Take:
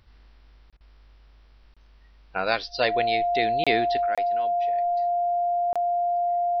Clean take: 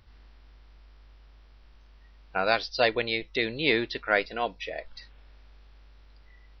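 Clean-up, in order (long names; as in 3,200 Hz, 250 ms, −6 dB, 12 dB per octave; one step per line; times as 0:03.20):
notch filter 700 Hz, Q 30
repair the gap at 0:00.70/0:01.74/0:03.64/0:04.15/0:05.73, 26 ms
repair the gap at 0:00.77, 35 ms
level 0 dB, from 0:04.06 +10.5 dB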